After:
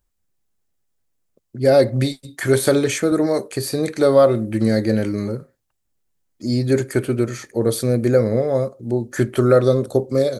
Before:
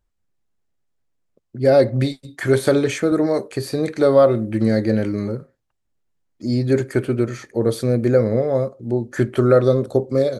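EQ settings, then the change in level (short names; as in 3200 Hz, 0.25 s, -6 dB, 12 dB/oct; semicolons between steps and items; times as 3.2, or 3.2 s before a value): high shelf 6100 Hz +11.5 dB; 0.0 dB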